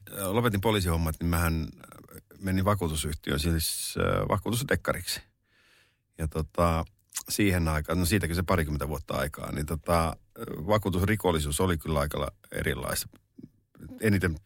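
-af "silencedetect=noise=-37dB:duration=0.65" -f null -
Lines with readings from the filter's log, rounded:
silence_start: 5.19
silence_end: 6.19 | silence_duration: 1.00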